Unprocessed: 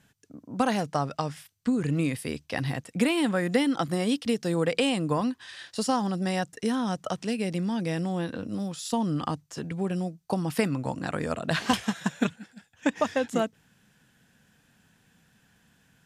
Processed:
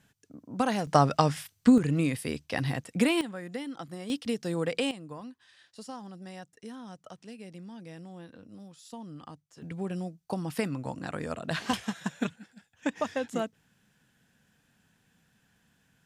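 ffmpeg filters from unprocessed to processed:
-af "asetnsamples=n=441:p=0,asendcmd='0.87 volume volume 6.5dB;1.78 volume volume -0.5dB;3.21 volume volume -13dB;4.1 volume volume -4.5dB;4.91 volume volume -16dB;9.62 volume volume -5dB',volume=-2.5dB"

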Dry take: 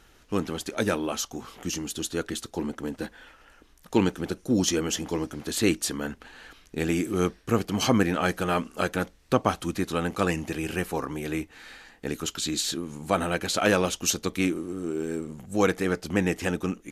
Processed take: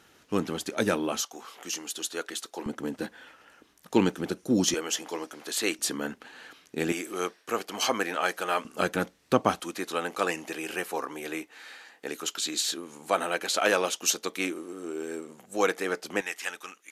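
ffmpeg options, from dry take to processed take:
-af "asetnsamples=n=441:p=0,asendcmd='1.2 highpass f 530;2.66 highpass f 150;4.74 highpass f 510;5.79 highpass f 200;6.92 highpass f 530;8.65 highpass f 150;9.6 highpass f 420;16.21 highpass f 1200',highpass=130"

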